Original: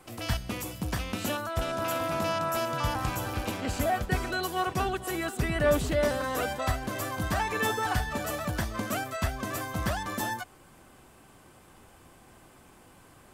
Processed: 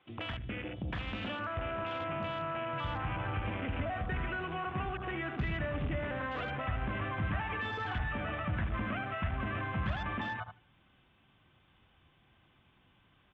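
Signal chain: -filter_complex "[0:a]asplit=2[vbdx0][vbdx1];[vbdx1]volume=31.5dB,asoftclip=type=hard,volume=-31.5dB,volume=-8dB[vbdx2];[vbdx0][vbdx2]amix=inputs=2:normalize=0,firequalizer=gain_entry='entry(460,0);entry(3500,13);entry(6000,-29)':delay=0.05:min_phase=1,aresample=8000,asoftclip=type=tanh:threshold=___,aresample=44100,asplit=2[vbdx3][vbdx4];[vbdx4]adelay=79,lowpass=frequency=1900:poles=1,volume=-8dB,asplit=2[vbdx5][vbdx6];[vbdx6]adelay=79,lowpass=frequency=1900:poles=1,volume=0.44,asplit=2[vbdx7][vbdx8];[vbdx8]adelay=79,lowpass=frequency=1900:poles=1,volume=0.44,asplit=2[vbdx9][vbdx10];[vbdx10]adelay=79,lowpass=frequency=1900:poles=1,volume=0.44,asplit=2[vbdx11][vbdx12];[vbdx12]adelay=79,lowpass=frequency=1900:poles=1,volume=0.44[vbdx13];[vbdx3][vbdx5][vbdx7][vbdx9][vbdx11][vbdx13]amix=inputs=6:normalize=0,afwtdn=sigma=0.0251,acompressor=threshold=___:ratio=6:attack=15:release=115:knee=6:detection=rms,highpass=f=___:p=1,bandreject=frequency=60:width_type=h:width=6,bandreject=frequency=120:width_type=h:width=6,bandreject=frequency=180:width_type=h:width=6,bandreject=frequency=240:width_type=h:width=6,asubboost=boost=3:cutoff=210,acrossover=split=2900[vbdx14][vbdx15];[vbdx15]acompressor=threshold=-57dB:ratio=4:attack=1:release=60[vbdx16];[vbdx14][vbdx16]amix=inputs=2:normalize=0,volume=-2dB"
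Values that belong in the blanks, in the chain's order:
-18.5dB, -32dB, 77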